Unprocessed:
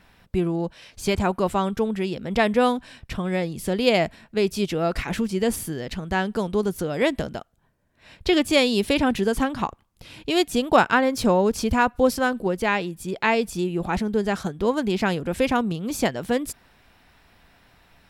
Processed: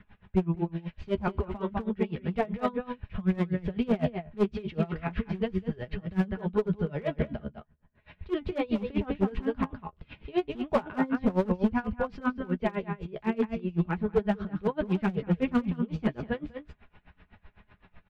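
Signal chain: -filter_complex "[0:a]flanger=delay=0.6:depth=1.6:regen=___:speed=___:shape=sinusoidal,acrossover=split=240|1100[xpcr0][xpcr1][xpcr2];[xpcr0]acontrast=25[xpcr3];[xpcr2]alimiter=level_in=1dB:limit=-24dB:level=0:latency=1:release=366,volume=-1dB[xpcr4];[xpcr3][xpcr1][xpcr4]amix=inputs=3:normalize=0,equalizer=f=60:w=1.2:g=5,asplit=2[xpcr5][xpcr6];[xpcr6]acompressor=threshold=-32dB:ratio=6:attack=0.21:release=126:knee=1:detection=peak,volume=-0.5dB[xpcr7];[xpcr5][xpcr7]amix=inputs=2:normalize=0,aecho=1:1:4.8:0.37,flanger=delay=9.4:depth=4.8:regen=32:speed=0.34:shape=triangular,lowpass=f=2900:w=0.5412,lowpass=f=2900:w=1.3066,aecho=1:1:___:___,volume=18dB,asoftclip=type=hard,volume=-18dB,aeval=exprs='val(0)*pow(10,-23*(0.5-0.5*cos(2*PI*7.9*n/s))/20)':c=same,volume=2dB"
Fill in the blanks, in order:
-55, 1.8, 199, 0.501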